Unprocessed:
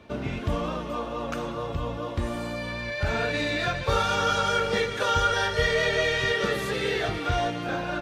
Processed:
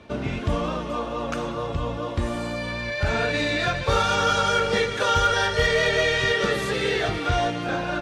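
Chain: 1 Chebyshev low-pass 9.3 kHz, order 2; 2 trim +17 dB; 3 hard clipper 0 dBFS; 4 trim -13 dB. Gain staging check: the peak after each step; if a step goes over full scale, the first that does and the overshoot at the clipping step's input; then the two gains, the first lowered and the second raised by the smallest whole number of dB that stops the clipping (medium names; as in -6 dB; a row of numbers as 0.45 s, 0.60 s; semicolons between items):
-11.5 dBFS, +5.5 dBFS, 0.0 dBFS, -13.0 dBFS; step 2, 5.5 dB; step 2 +11 dB, step 4 -7 dB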